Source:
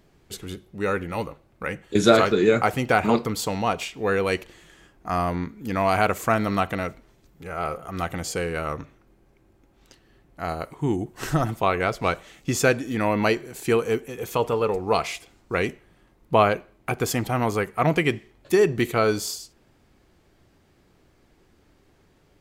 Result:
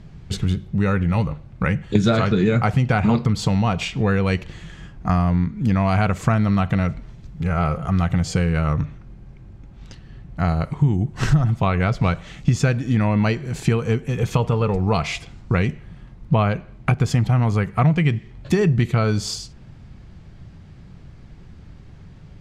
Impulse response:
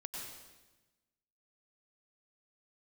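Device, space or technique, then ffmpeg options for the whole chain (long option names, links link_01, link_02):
jukebox: -af "lowpass=6000,lowshelf=frequency=230:width_type=q:width=1.5:gain=11.5,acompressor=threshold=-24dB:ratio=4,volume=8dB"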